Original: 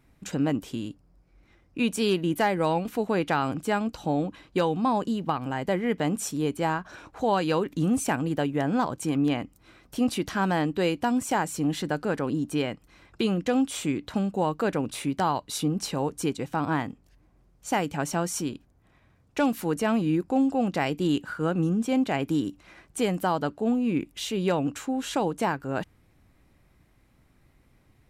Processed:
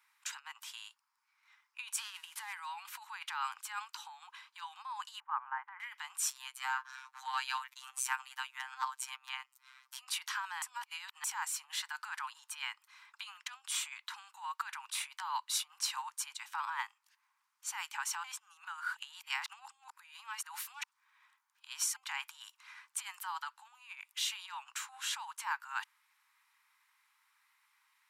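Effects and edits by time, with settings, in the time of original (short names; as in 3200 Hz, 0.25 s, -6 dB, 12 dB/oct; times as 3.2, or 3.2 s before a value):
1.98–2.53 CVSD 64 kbps
5.2–5.8 LPF 1600 Hz 24 dB/oct
6.3–9.98 robotiser 131 Hz
10.62–11.24 reverse
18.24–21.96 reverse
whole clip: negative-ratio compressor -27 dBFS, ratio -0.5; steep high-pass 880 Hz 96 dB/oct; gain -3.5 dB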